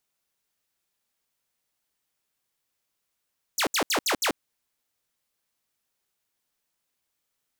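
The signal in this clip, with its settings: burst of laser zaps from 8.1 kHz, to 220 Hz, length 0.09 s saw, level -19 dB, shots 5, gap 0.07 s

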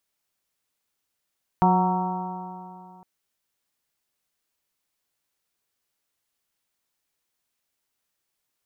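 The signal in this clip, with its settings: stretched partials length 1.41 s, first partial 181 Hz, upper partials -8/-18/-2/0.5/-11.5/-17 dB, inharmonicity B 0.0021, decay 2.58 s, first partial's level -18.5 dB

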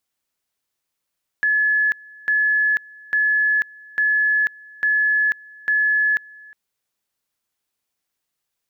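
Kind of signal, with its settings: two-level tone 1.71 kHz -15 dBFS, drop 25 dB, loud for 0.49 s, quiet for 0.36 s, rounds 6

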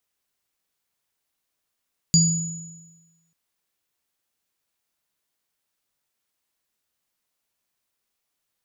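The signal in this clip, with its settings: sine partials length 1.19 s, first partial 165 Hz, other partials 4.79/6.89 kHz, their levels -4/-1 dB, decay 1.23 s, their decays 0.40/1.22 s, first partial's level -14 dB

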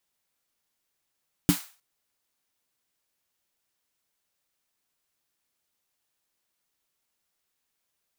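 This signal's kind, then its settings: snare drum length 0.31 s, tones 180 Hz, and 290 Hz, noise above 760 Hz, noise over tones -10.5 dB, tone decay 0.11 s, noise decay 0.38 s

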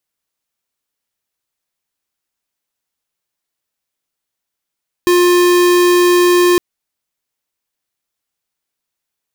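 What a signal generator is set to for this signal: tone square 354 Hz -10 dBFS 1.51 s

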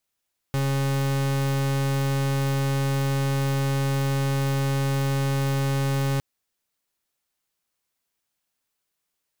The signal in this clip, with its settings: pulse 137 Hz, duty 41% -23.5 dBFS 5.66 s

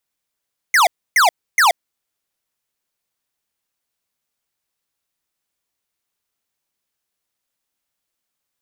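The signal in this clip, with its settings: burst of laser zaps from 2.2 kHz, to 640 Hz, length 0.13 s square, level -12 dB, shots 3, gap 0.29 s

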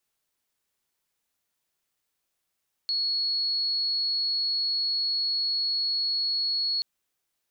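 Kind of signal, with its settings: tone sine 4.35 kHz -24 dBFS 3.93 s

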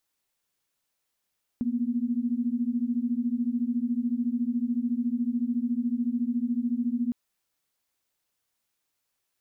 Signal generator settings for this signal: chord A#3/B3 sine, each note -27.5 dBFS 5.51 s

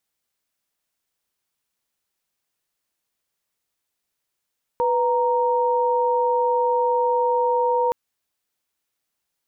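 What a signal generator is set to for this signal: chord B4/A#5 sine, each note -20 dBFS 3.12 s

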